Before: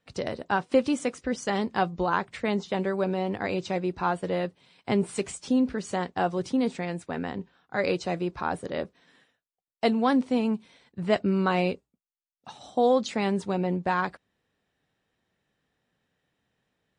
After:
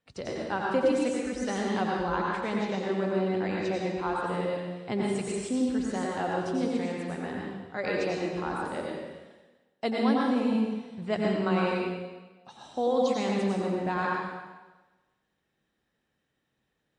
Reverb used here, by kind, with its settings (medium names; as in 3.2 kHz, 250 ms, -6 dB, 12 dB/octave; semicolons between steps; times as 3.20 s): plate-style reverb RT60 1.2 s, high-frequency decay 0.95×, pre-delay 80 ms, DRR -3 dB; trim -6.5 dB